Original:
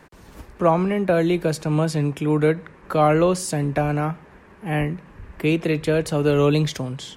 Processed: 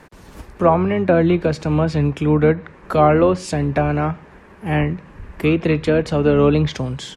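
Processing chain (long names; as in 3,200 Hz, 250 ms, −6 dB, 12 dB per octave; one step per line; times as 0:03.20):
treble cut that deepens with the level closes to 2,400 Hz, closed at −14.5 dBFS
pitch-shifted copies added −12 semitones −12 dB
level +3.5 dB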